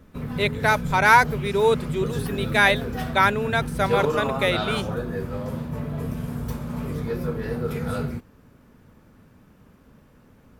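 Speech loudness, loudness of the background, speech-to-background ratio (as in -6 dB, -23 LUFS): -22.0 LUFS, -29.0 LUFS, 7.0 dB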